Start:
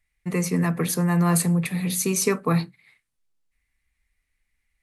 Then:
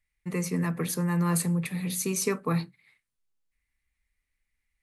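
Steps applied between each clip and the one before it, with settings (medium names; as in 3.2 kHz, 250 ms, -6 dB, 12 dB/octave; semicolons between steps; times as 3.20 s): band-stop 700 Hz, Q 12; trim -5.5 dB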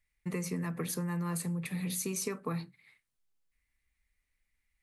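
compression, threshold -32 dBFS, peak gain reduction 10 dB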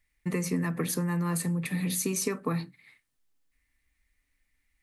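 small resonant body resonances 280/1800 Hz, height 9 dB, ringing for 85 ms; trim +5 dB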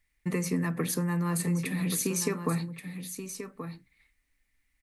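delay 1129 ms -9.5 dB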